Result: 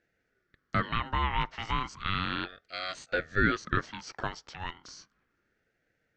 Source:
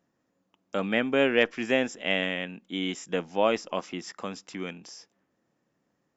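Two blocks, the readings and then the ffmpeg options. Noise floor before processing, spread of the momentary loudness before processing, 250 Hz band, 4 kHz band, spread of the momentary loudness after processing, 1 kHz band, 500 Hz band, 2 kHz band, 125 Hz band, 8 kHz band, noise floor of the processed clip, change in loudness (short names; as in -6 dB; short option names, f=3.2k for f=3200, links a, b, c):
-77 dBFS, 15 LU, -6.5 dB, -3.5 dB, 13 LU, +3.0 dB, -12.0 dB, -2.0 dB, +5.5 dB, n/a, -78 dBFS, -4.0 dB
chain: -af "alimiter=limit=-17dB:level=0:latency=1:release=132,highpass=f=440:w=0.5412,highpass=f=440:w=1.3066,equalizer=f=880:t=q:w=4:g=6,equalizer=f=1.9k:t=q:w=4:g=-9,equalizer=f=3k:t=q:w=4:g=-7,lowpass=f=4.9k:w=0.5412,lowpass=f=4.9k:w=1.3066,aeval=exprs='val(0)*sin(2*PI*730*n/s+730*0.4/0.34*sin(2*PI*0.34*n/s))':c=same,volume=6dB"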